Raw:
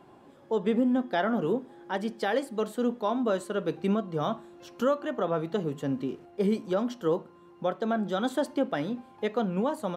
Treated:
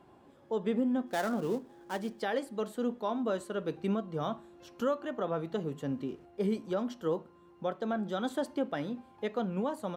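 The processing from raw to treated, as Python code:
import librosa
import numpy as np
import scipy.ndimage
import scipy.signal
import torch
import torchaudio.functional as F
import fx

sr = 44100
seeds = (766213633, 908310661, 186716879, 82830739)

y = fx.dead_time(x, sr, dead_ms=0.087, at=(1.06, 2.19), fade=0.02)
y = fx.peak_eq(y, sr, hz=66.0, db=9.5, octaves=0.78)
y = y * librosa.db_to_amplitude(-5.0)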